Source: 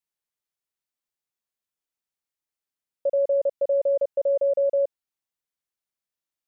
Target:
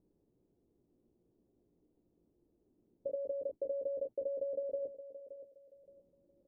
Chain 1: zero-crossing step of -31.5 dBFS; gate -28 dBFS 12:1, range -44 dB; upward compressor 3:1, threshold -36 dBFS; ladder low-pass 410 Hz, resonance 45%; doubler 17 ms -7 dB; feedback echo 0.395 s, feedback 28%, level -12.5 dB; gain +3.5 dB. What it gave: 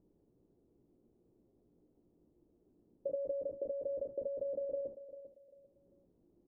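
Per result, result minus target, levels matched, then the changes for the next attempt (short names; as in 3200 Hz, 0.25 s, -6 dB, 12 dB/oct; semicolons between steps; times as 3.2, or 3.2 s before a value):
zero-crossing step: distortion +10 dB; echo 0.177 s early
change: zero-crossing step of -42.5 dBFS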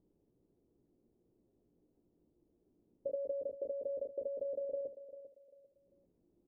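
echo 0.177 s early
change: feedback echo 0.572 s, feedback 28%, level -12.5 dB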